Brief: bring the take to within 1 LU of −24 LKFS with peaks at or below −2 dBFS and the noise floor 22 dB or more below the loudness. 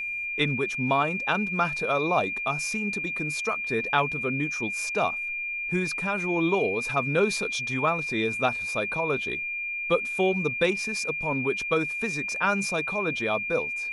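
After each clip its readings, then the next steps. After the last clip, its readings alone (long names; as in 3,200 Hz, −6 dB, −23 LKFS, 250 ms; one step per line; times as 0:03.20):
interfering tone 2,400 Hz; level of the tone −29 dBFS; integrated loudness −26.0 LKFS; sample peak −9.5 dBFS; target loudness −24.0 LKFS
→ notch filter 2,400 Hz, Q 30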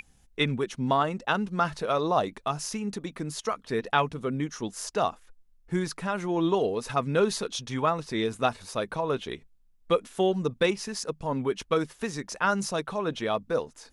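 interfering tone none found; integrated loudness −29.0 LKFS; sample peak −9.5 dBFS; target loudness −24.0 LKFS
→ level +5 dB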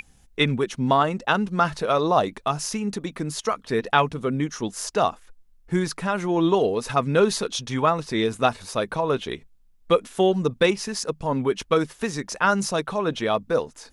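integrated loudness −24.0 LKFS; sample peak −4.5 dBFS; background noise floor −56 dBFS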